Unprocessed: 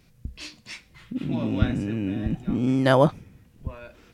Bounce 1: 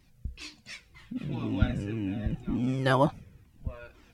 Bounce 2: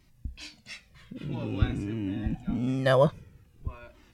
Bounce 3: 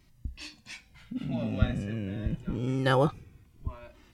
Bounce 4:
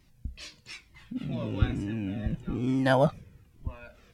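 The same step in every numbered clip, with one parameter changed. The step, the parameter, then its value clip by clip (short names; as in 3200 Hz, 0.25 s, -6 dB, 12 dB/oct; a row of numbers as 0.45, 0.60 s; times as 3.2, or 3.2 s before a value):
cascading flanger, rate: 2, 0.51, 0.26, 1.1 Hz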